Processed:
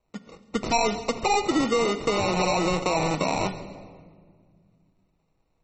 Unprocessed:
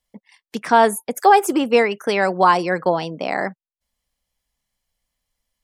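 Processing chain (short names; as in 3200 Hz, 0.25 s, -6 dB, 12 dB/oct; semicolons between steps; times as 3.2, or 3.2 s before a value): rattling part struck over -31 dBFS, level -10 dBFS; de-esser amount 100%; limiter -14 dBFS, peak gain reduction 6.5 dB; compressor 4:1, threshold -23 dBFS, peak gain reduction 5.5 dB; 2.32–3.1 bell 89 Hz -14.5 dB 0.69 oct; sample-and-hold 27×; 0.64–1.14 bell 5200 Hz +5 dB 0.72 oct; shoebox room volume 2600 m³, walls mixed, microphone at 0.61 m; soft clip -18.5 dBFS, distortion -20 dB; thin delay 0.137 s, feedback 39%, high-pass 3200 Hz, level -15 dB; gain +4.5 dB; MP3 32 kbps 48000 Hz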